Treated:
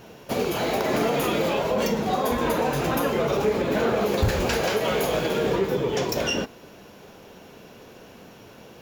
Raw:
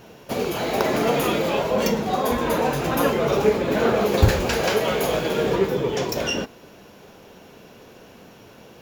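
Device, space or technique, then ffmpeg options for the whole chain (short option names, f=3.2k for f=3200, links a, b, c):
clipper into limiter: -af "asoftclip=type=hard:threshold=-9dB,alimiter=limit=-14dB:level=0:latency=1:release=106"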